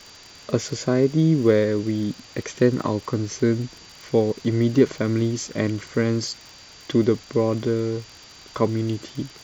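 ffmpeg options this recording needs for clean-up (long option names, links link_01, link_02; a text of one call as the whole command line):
ffmpeg -i in.wav -af "adeclick=threshold=4,bandreject=frequency=4700:width=30,afwtdn=0.0071" out.wav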